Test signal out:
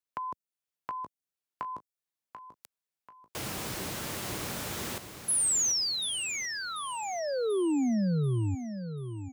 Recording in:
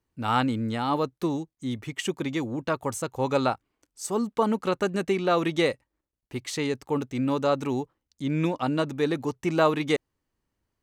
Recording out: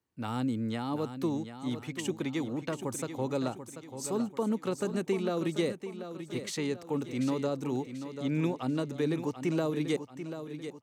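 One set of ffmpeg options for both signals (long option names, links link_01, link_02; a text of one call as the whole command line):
ffmpeg -i in.wav -filter_complex "[0:a]highpass=98,acrossover=split=470|5100[link_01][link_02][link_03];[link_02]acompressor=threshold=-34dB:ratio=10[link_04];[link_01][link_04][link_03]amix=inputs=3:normalize=0,aecho=1:1:738|1476|2214|2952|3690:0.316|0.136|0.0585|0.0251|0.0108,volume=-3.5dB" out.wav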